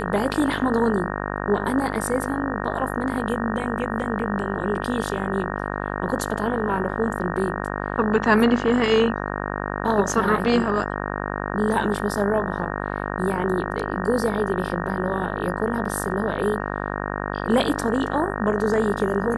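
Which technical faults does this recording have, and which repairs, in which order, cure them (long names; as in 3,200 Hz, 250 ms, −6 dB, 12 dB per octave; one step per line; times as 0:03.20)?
mains buzz 50 Hz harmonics 37 −28 dBFS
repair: hum removal 50 Hz, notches 37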